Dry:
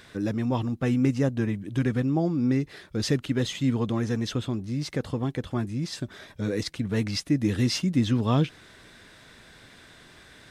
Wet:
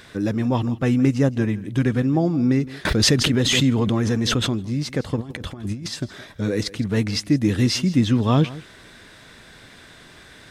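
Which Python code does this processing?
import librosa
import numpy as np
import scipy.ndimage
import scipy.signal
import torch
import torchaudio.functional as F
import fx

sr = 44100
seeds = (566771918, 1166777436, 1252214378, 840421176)

p1 = fx.over_compress(x, sr, threshold_db=-33.0, ratio=-0.5, at=(5.16, 5.88))
p2 = p1 + fx.echo_single(p1, sr, ms=164, db=-18.5, dry=0)
p3 = fx.pre_swell(p2, sr, db_per_s=23.0, at=(2.85, 4.64))
y = p3 * librosa.db_to_amplitude(5.0)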